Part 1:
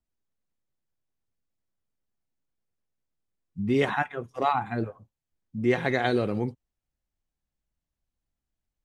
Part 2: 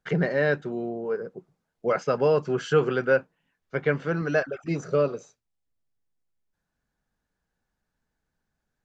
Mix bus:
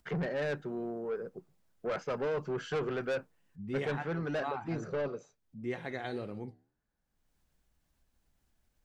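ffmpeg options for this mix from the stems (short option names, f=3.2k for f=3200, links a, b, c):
-filter_complex "[0:a]acompressor=mode=upward:threshold=-40dB:ratio=2.5,flanger=delay=9.8:depth=4.7:regen=-83:speed=1.9:shape=triangular,volume=-9dB[a];[1:a]highshelf=f=3.6k:g=-7.5,asoftclip=type=tanh:threshold=-24dB,volume=-5dB[b];[a][b]amix=inputs=2:normalize=0"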